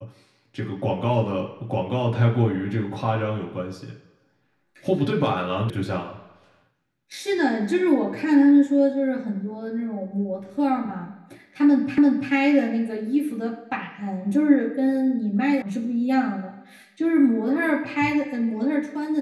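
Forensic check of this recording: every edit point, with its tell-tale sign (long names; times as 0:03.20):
0:05.70: cut off before it has died away
0:11.98: the same again, the last 0.34 s
0:15.62: cut off before it has died away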